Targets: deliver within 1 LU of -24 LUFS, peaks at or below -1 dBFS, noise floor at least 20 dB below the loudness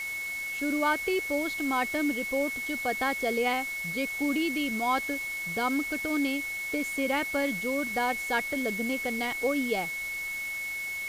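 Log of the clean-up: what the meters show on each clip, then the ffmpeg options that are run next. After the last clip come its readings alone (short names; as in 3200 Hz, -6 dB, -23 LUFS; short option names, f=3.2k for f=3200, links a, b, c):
steady tone 2200 Hz; tone level -32 dBFS; noise floor -35 dBFS; noise floor target -49 dBFS; loudness -29.0 LUFS; peak -15.0 dBFS; loudness target -24.0 LUFS
-> -af "bandreject=f=2.2k:w=30"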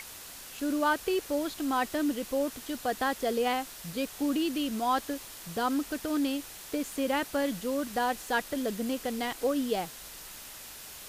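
steady tone none; noise floor -46 dBFS; noise floor target -51 dBFS
-> -af "afftdn=nr=6:nf=-46"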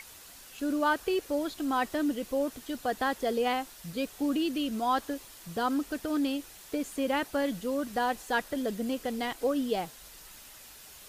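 noise floor -51 dBFS; loudness -31.0 LUFS; peak -15.5 dBFS; loudness target -24.0 LUFS
-> -af "volume=7dB"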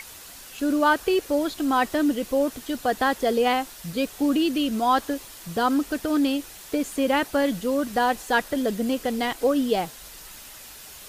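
loudness -24.0 LUFS; peak -8.5 dBFS; noise floor -44 dBFS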